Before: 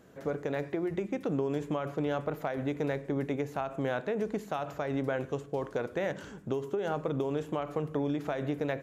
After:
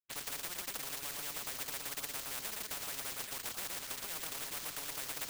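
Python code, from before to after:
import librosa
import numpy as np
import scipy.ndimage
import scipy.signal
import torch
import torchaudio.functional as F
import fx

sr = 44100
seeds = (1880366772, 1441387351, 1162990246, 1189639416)

y = scipy.signal.sosfilt(scipy.signal.butter(2, 1000.0, 'highpass', fs=sr, output='sos'), x)
y = fx.high_shelf(y, sr, hz=3100.0, db=-9.0)
y = fx.stretch_vocoder(y, sr, factor=0.6)
y = np.sign(y) * np.maximum(np.abs(y) - 10.0 ** (-59.0 / 20.0), 0.0)
y = y + 10.0 ** (-6.5 / 20.0) * np.pad(y, (int(116 * sr / 1000.0), 0))[:len(y)]
y = np.repeat(y[::4], 4)[:len(y)]
y = y + 10.0 ** (-18.0 / 20.0) * np.pad(y, (int(830 * sr / 1000.0), 0))[:len(y)]
y = fx.spectral_comp(y, sr, ratio=10.0)
y = y * 10.0 ** (5.5 / 20.0)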